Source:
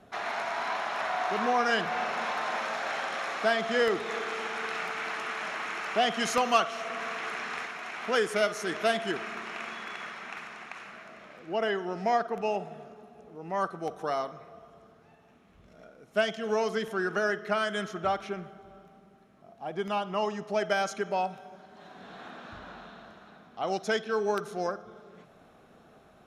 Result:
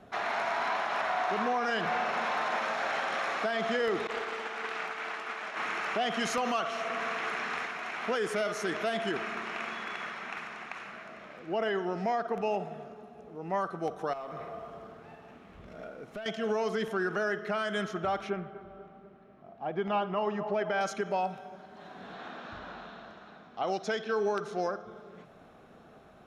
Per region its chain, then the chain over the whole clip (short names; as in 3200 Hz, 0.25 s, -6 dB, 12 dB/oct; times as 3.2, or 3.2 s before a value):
4.07–5.57 HPF 220 Hz + expander -31 dBFS + Doppler distortion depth 0.21 ms
14.13–16.26 tone controls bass -3 dB, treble -6 dB + compressor 12:1, threshold -43 dBFS + sample leveller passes 2
18.3–20.81 LPF 3100 Hz + narrowing echo 0.244 s, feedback 62%, band-pass 630 Hz, level -11.5 dB
22.14–24.87 LPF 6100 Hz + tone controls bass -3 dB, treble +4 dB
whole clip: limiter -23 dBFS; high shelf 5100 Hz -6.5 dB; gain +2 dB